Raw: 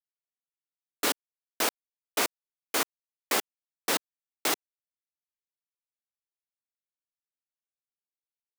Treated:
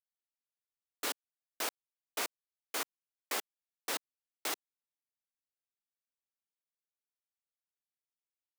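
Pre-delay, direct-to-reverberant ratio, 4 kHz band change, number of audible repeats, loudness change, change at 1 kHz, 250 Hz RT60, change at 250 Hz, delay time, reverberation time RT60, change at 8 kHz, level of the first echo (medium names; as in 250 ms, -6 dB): no reverb, no reverb, -8.5 dB, no echo, -9.0 dB, -9.0 dB, no reverb, -12.5 dB, no echo, no reverb, -8.5 dB, no echo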